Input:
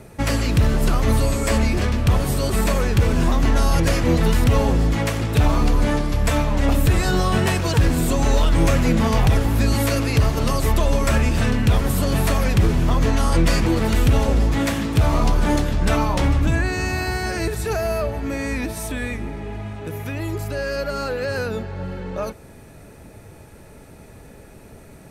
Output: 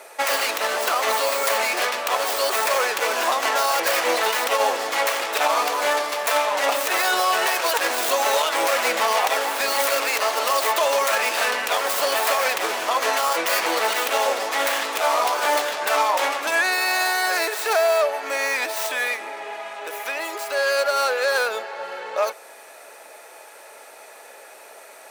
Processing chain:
stylus tracing distortion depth 0.29 ms
high-pass filter 580 Hz 24 dB per octave
brickwall limiter −17 dBFS, peak gain reduction 7 dB
level +7.5 dB

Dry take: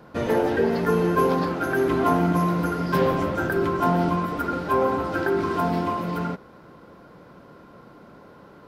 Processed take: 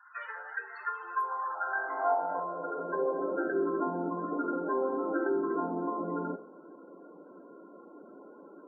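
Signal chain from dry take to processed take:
downward compressor, threshold −25 dBFS, peak gain reduction 9.5 dB
high-pass filter sweep 1,400 Hz → 320 Hz, 0:00.74–0:03.61
spectral peaks only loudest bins 32
0:01.73–0:02.40: flutter between parallel walls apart 3.7 metres, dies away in 0.67 s
coupled-rooms reverb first 0.52 s, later 2.3 s, from −25 dB, DRR 8.5 dB
level −6.5 dB

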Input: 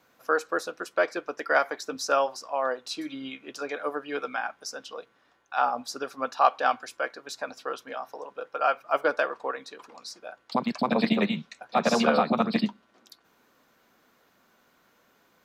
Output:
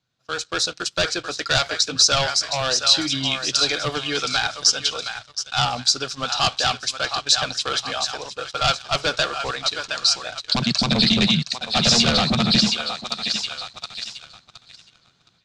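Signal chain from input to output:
on a send: feedback echo with a high-pass in the loop 717 ms, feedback 46%, high-pass 910 Hz, level −9 dB
on the sum: soft clipping −10 dBFS, distortion −23 dB
automatic gain control gain up to 13.5 dB
leveller curve on the samples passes 2
high-frequency loss of the air 110 metres
in parallel at −11.5 dB: gain into a clipping stage and back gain 6.5 dB
on the sum: octave-band graphic EQ 125/250/500/1,000/2,000/4,000/8,000 Hz +9/−10/−11/−10/−7/+10/+11 dB
boost into a limiter 0 dB
one half of a high-frequency compander decoder only
level −4 dB

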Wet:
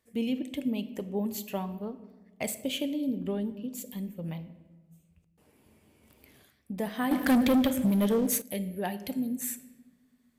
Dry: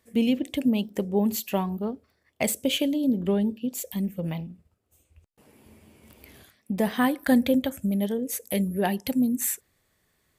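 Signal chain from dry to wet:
rectangular room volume 880 cubic metres, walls mixed, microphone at 0.42 metres
0:07.11–0:08.42: leveller curve on the samples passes 3
level −7.5 dB

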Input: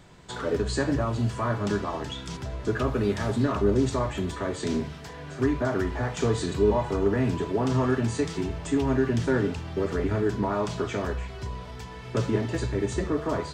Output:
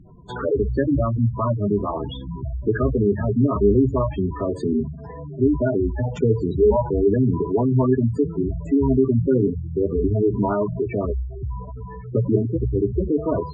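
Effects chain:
gate on every frequency bin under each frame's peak −10 dB strong
high-shelf EQ 3,800 Hz −12 dB
level +7 dB

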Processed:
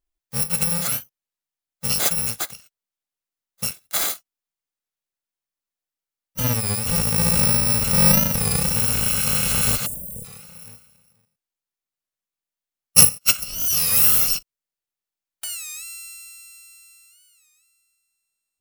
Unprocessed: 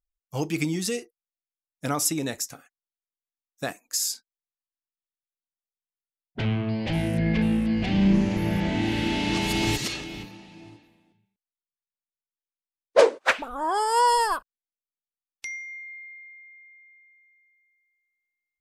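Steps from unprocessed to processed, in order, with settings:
samples in bit-reversed order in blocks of 128 samples
0:09.86–0:10.26: elliptic band-stop filter 560–8,400 Hz, stop band 50 dB
wow of a warped record 33 1/3 rpm, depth 160 cents
level +4.5 dB

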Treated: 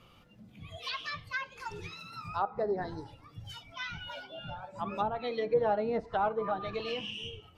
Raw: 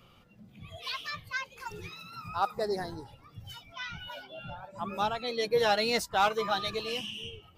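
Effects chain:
tape wow and flutter 23 cents
feedback delay network reverb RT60 0.47 s, high-frequency decay 0.65×, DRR 14.5 dB
treble cut that deepens with the level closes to 830 Hz, closed at −25.5 dBFS

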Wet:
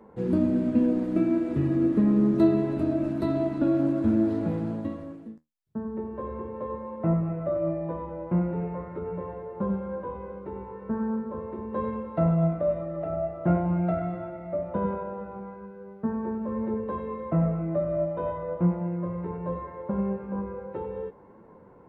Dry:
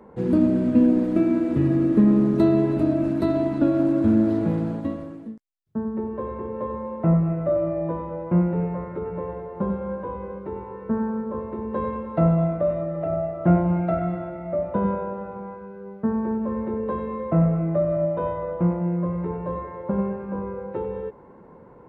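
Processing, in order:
flanger 0.42 Hz, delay 8.8 ms, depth 7.2 ms, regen +62%

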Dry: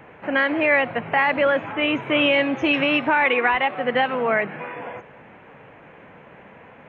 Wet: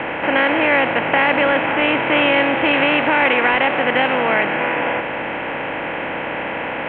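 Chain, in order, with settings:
compressor on every frequency bin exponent 0.4
Butterworth low-pass 3,800 Hz 48 dB per octave
low-shelf EQ 150 Hz +3 dB
level −2 dB

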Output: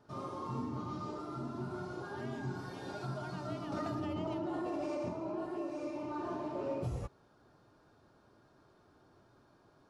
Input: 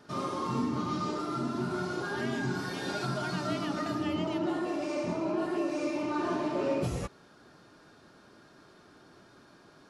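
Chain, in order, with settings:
drawn EQ curve 120 Hz 0 dB, 170 Hz −8 dB, 910 Hz −4 dB, 1,800 Hz −12 dB
0:03.72–0:05.09: envelope flattener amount 100%
level −2 dB

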